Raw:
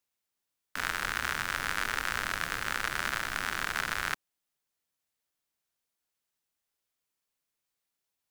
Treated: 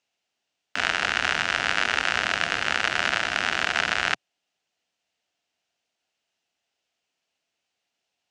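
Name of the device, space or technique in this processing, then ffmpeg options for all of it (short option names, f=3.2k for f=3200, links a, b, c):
car door speaker: -af "highpass=90,equalizer=f=130:t=q:w=4:g=-6,equalizer=f=700:t=q:w=4:g=8,equalizer=f=1.1k:t=q:w=4:g=-5,equalizer=f=2.8k:t=q:w=4:g=7,lowpass=f=6.7k:w=0.5412,lowpass=f=6.7k:w=1.3066,volume=7.5dB"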